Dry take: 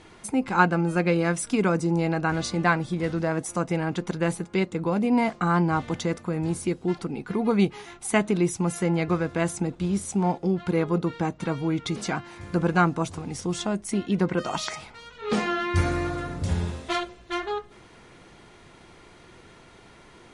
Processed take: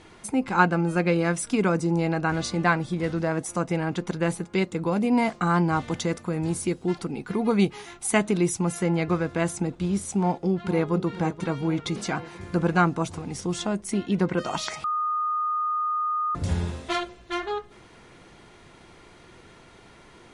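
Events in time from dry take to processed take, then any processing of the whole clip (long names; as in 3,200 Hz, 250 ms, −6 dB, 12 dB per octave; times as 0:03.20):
0:04.54–0:08.59: high-shelf EQ 4,900 Hz +5 dB
0:10.16–0:10.92: delay throw 480 ms, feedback 65%, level −12.5 dB
0:14.84–0:16.35: beep over 1,230 Hz −23 dBFS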